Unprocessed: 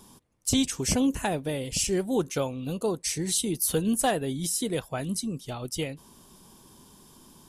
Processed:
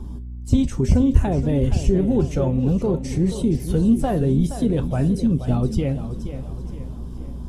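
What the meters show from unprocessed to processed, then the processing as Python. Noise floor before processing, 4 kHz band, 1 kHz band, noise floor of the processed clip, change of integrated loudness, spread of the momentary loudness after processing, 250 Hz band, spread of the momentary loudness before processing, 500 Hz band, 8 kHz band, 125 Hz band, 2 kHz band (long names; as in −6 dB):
−55 dBFS, −8.5 dB, +1.0 dB, −33 dBFS, +7.0 dB, 14 LU, +9.5 dB, 8 LU, +5.5 dB, −12.0 dB, +15.0 dB, −4.0 dB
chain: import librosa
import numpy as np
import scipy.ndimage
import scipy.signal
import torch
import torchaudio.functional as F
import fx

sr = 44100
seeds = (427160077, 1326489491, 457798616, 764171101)

p1 = fx.spec_quant(x, sr, step_db=15)
p2 = fx.over_compress(p1, sr, threshold_db=-33.0, ratio=-1.0)
p3 = p1 + F.gain(torch.from_numpy(p2), 0.5).numpy()
p4 = fx.add_hum(p3, sr, base_hz=60, snr_db=20)
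p5 = fx.tilt_eq(p4, sr, slope=-4.5)
p6 = fx.comb_fb(p5, sr, f0_hz=79.0, decay_s=0.26, harmonics='odd', damping=0.0, mix_pct=60)
p7 = p6 + fx.echo_swing(p6, sr, ms=865, ratio=1.5, feedback_pct=51, wet_db=-22.5, dry=0)
p8 = fx.echo_warbled(p7, sr, ms=474, feedback_pct=43, rate_hz=2.8, cents=95, wet_db=-11.0)
y = F.gain(torch.from_numpy(p8), 2.5).numpy()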